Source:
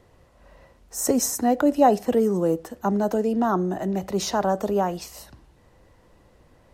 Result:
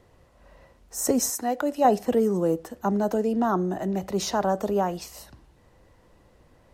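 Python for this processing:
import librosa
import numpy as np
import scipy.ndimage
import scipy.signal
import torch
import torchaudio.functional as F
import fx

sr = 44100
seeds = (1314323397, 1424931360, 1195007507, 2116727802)

y = fx.low_shelf(x, sr, hz=360.0, db=-11.5, at=(1.3, 1.85))
y = y * librosa.db_to_amplitude(-1.5)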